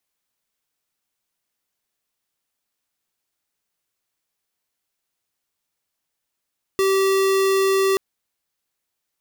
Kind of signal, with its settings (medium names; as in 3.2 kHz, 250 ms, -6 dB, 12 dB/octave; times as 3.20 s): tone square 387 Hz -18 dBFS 1.18 s